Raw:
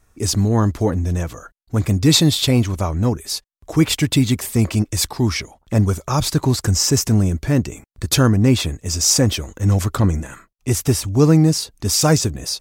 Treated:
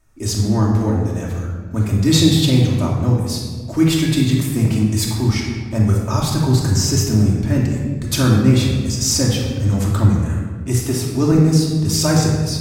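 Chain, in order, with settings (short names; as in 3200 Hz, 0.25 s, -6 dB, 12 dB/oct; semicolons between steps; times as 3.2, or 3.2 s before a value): 10.74–11.32 HPF 140 Hz 24 dB/oct; shoebox room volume 1600 m³, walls mixed, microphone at 2.7 m; gain -5.5 dB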